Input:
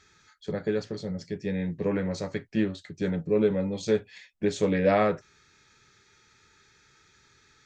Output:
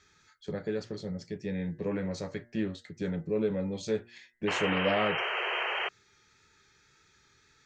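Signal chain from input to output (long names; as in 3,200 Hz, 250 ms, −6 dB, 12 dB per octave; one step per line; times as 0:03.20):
tape wow and flutter 22 cents
in parallel at −3 dB: brickwall limiter −23.5 dBFS, peak gain reduction 12.5 dB
on the sum: hum removal 117.8 Hz, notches 18
sound drawn into the spectrogram noise, 0:04.47–0:05.89, 350–3,200 Hz −24 dBFS
level −8 dB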